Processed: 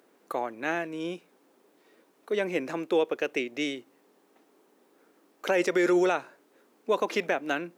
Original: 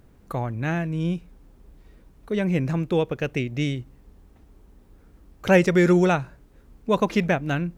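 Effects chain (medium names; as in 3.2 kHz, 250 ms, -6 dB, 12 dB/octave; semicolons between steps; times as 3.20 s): high-pass 310 Hz 24 dB/octave; peak limiter -15.5 dBFS, peak gain reduction 9.5 dB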